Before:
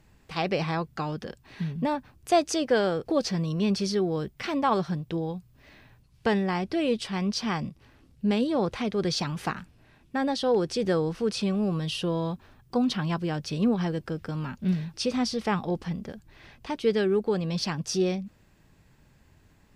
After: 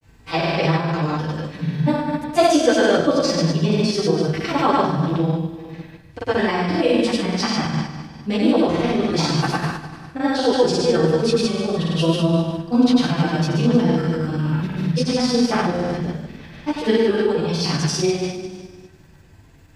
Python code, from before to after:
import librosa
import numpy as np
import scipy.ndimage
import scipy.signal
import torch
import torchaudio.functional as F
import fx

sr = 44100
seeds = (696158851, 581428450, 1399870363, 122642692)

y = fx.rev_fdn(x, sr, rt60_s=1.4, lf_ratio=1.2, hf_ratio=1.0, size_ms=61.0, drr_db=-9.5)
y = fx.granulator(y, sr, seeds[0], grain_ms=100.0, per_s=20.0, spray_ms=100.0, spread_st=0)